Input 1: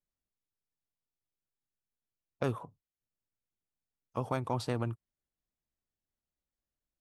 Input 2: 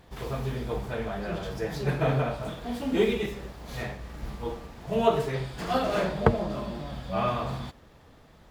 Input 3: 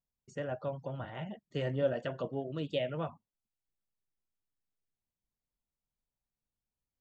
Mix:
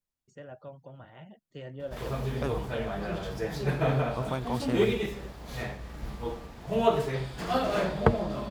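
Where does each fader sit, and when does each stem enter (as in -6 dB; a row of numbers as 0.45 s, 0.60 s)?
0.0 dB, -1.0 dB, -8.0 dB; 0.00 s, 1.80 s, 0.00 s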